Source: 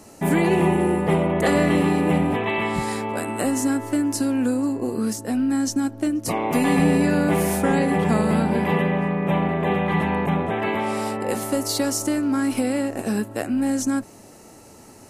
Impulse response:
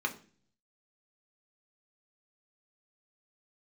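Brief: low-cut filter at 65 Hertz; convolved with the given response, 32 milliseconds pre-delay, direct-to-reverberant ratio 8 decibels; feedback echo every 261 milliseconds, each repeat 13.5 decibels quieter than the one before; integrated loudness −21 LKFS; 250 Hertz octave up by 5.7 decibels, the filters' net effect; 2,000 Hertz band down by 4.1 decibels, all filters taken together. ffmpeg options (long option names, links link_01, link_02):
-filter_complex "[0:a]highpass=65,equalizer=frequency=250:width_type=o:gain=7,equalizer=frequency=2000:width_type=o:gain=-5,aecho=1:1:261|522:0.211|0.0444,asplit=2[link_01][link_02];[1:a]atrim=start_sample=2205,adelay=32[link_03];[link_02][link_03]afir=irnorm=-1:irlink=0,volume=-14dB[link_04];[link_01][link_04]amix=inputs=2:normalize=0,volume=-3.5dB"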